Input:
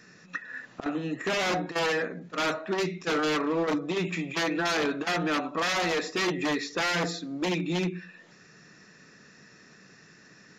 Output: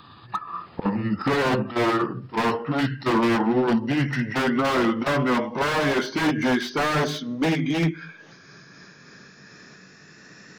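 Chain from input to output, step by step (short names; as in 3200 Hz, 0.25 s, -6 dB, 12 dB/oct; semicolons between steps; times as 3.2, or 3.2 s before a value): gliding pitch shift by -7 st ending unshifted; slew limiter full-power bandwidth 52 Hz; gain +7.5 dB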